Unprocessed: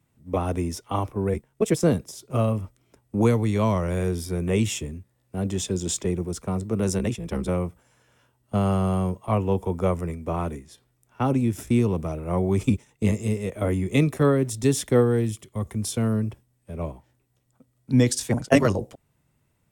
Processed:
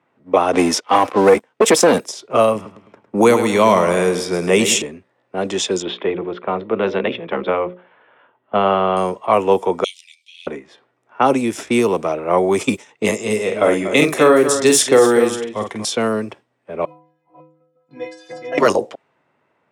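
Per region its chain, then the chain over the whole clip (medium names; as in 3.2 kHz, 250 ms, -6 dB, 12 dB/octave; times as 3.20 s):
0.53–2.00 s: treble shelf 7.5 kHz -11.5 dB + comb 3.9 ms, depth 33% + waveshaping leveller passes 2
2.55–4.82 s: peaking EQ 170 Hz +6 dB 0.8 oct + feedback delay 105 ms, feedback 45%, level -10 dB
5.82–8.97 s: Chebyshev low-pass 3.5 kHz, order 4 + hum notches 60/120/180/240/300/360/420/480/540/600 Hz
9.84–10.47 s: steep high-pass 2.3 kHz 72 dB/octave + resonant high shelf 2.9 kHz +8.5 dB, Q 3
13.25–15.85 s: doubling 47 ms -6 dB + delay 238 ms -11.5 dB
16.85–18.58 s: chunks repeated in reverse 279 ms, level -1 dB + inharmonic resonator 150 Hz, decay 0.74 s, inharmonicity 0.03
whole clip: level-controlled noise filter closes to 1.8 kHz, open at -16 dBFS; high-pass 460 Hz 12 dB/octave; loudness maximiser +15.5 dB; trim -1 dB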